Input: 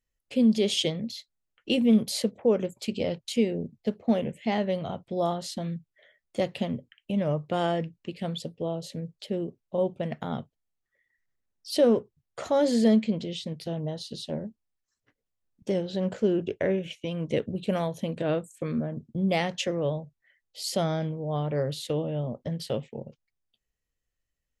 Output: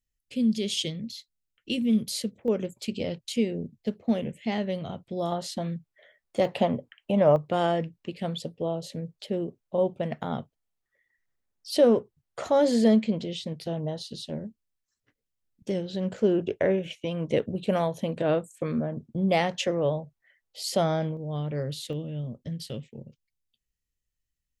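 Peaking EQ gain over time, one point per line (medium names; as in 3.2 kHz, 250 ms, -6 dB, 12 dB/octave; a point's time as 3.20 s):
peaking EQ 810 Hz 1.9 oct
-14.5 dB
from 2.48 s -4.5 dB
from 5.32 s +4.5 dB
from 6.45 s +13 dB
from 7.36 s +2.5 dB
from 14.07 s -4.5 dB
from 16.18 s +4 dB
from 21.17 s -7.5 dB
from 21.93 s -15 dB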